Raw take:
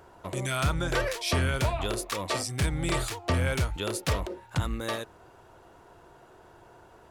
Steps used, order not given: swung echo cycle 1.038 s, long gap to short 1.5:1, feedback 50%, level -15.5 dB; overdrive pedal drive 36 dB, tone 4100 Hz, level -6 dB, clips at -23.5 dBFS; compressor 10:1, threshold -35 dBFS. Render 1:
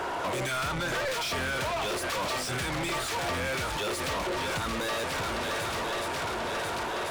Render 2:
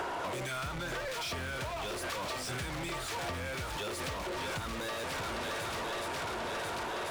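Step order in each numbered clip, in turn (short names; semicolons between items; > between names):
swung echo > compressor > overdrive pedal; swung echo > overdrive pedal > compressor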